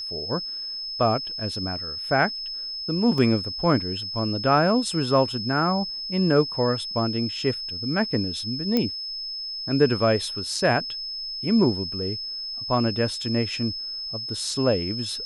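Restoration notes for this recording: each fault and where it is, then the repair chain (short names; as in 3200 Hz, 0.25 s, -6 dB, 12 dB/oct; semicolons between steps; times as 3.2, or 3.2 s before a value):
tone 5200 Hz -30 dBFS
3.18 gap 2.3 ms
8.77 pop -10 dBFS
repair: de-click; notch 5200 Hz, Q 30; interpolate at 3.18, 2.3 ms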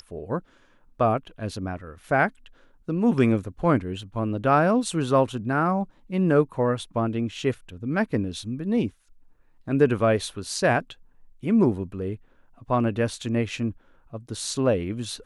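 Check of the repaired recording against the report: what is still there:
none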